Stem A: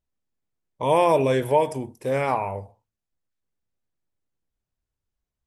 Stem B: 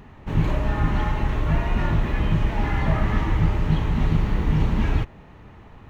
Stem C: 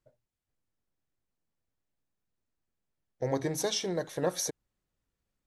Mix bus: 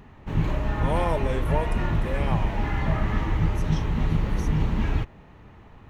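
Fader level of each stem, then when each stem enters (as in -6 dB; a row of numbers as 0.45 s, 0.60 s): -9.0 dB, -3.0 dB, -15.0 dB; 0.00 s, 0.00 s, 0.00 s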